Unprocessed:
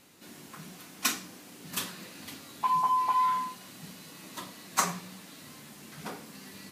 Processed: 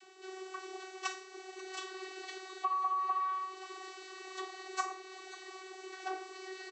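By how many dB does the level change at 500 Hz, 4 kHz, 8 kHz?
+2.5, −7.5, −14.0 decibels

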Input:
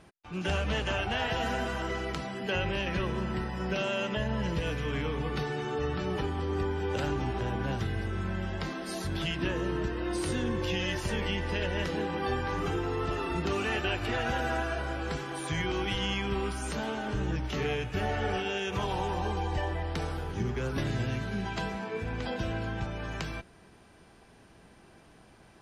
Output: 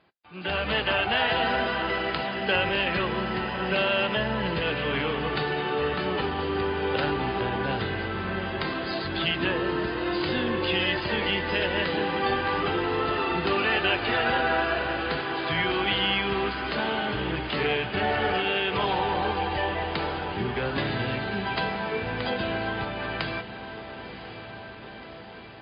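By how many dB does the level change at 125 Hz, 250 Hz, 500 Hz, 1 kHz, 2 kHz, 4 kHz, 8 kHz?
−1.5 dB, +3.0 dB, +5.5 dB, +7.5 dB, +8.5 dB, +8.5 dB, below −25 dB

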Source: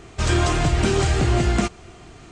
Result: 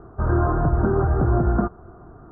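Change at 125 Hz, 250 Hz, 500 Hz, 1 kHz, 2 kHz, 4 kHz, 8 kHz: 0.0 dB, 0.0 dB, 0.0 dB, 0.0 dB, −8.5 dB, below −40 dB, below −40 dB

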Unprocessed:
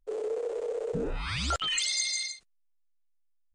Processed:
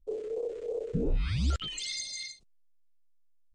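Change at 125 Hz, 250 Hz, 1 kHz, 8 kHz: +6.0, +3.5, −11.5, −8.5 decibels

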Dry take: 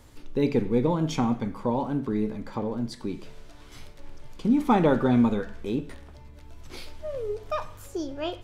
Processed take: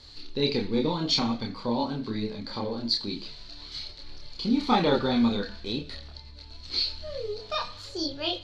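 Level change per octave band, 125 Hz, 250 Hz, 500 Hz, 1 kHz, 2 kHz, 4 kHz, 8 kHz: −5.0 dB, −3.0 dB, −2.5 dB, −1.0 dB, +1.5 dB, +14.5 dB, can't be measured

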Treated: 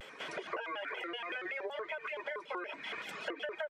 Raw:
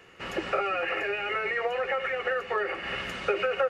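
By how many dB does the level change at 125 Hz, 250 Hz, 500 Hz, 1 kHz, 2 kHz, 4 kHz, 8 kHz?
below −15 dB, −8.0 dB, −12.5 dB, −11.5 dB, −9.5 dB, −7.5 dB, can't be measured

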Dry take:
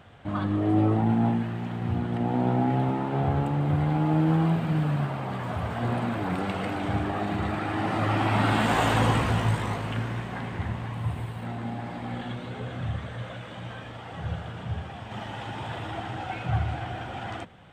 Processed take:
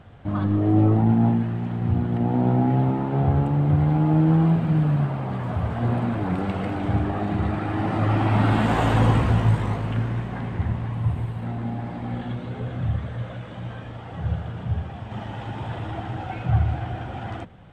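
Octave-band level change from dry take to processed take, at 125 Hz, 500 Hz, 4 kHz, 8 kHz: +6.0 dB, +2.0 dB, −3.5 dB, can't be measured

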